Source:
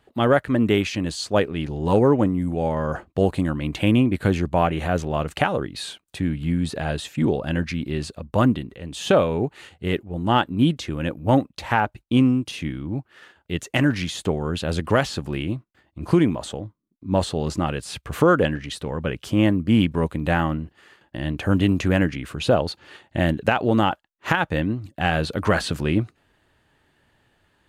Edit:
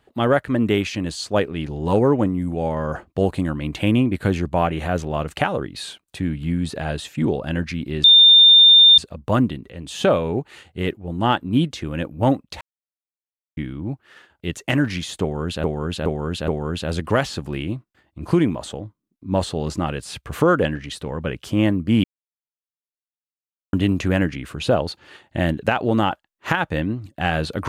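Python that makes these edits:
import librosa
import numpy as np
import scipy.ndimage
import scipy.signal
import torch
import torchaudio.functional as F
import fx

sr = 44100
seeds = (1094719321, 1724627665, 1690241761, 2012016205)

y = fx.edit(x, sr, fx.insert_tone(at_s=8.04, length_s=0.94, hz=3610.0, db=-6.5),
    fx.silence(start_s=11.67, length_s=0.96),
    fx.repeat(start_s=14.28, length_s=0.42, count=4),
    fx.silence(start_s=19.84, length_s=1.69), tone=tone)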